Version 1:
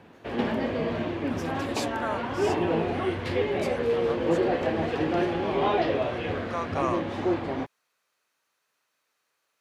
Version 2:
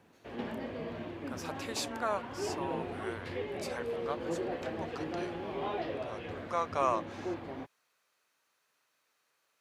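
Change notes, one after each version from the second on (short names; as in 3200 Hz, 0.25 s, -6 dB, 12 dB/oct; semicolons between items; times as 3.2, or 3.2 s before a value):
background -11.5 dB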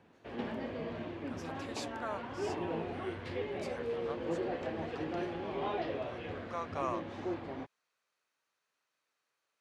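speech -7.0 dB; master: add Bessel low-pass 8400 Hz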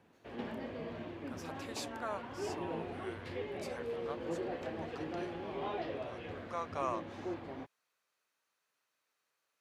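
background -3.0 dB; master: remove Bessel low-pass 8400 Hz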